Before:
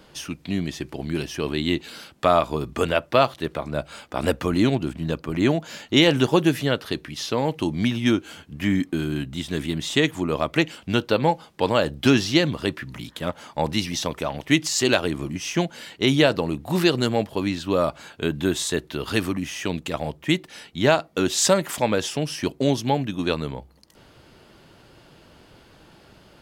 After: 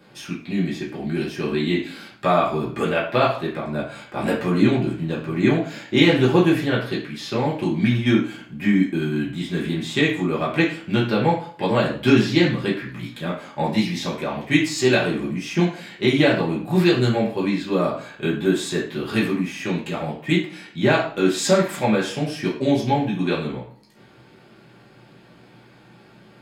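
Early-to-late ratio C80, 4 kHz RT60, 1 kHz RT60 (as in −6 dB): 10.5 dB, 0.45 s, 0.50 s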